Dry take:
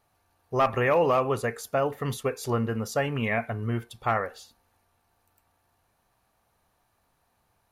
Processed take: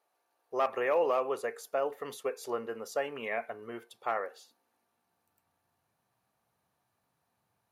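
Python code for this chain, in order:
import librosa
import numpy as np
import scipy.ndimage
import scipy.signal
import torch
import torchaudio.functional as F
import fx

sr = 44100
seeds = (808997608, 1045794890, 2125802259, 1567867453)

y = fx.filter_sweep_highpass(x, sr, from_hz=430.0, to_hz=130.0, start_s=4.17, end_s=5.45, q=1.4)
y = y * librosa.db_to_amplitude(-8.0)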